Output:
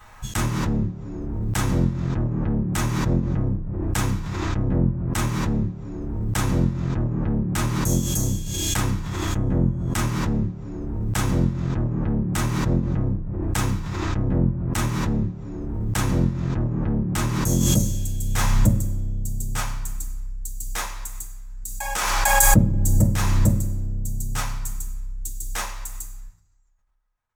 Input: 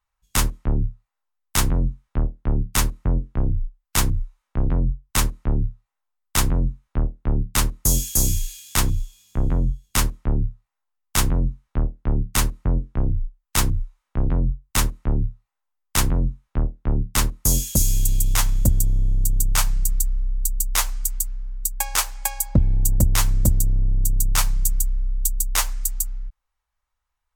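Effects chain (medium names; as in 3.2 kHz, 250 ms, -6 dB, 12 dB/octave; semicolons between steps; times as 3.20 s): tilt shelf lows +7 dB, about 1.3 kHz; reverberation RT60 1.1 s, pre-delay 3 ms, DRR -6 dB; swell ahead of each attack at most 23 dB/s; trim -8 dB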